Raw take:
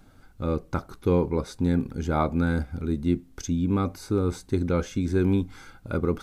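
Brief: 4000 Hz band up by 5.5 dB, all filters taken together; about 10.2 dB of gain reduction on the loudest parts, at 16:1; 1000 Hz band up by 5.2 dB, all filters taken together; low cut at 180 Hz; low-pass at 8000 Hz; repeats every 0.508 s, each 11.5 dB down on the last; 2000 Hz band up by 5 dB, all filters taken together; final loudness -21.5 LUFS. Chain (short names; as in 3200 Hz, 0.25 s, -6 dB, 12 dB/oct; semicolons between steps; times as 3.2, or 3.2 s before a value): HPF 180 Hz; LPF 8000 Hz; bell 1000 Hz +5.5 dB; bell 2000 Hz +3.5 dB; bell 4000 Hz +5.5 dB; compressor 16:1, threshold -26 dBFS; feedback echo 0.508 s, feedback 27%, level -11.5 dB; gain +11.5 dB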